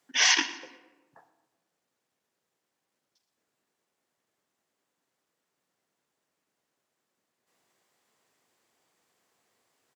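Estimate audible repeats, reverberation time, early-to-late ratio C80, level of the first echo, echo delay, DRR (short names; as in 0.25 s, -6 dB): 2, 1.2 s, 13.0 dB, -17.5 dB, 0.12 s, 10.5 dB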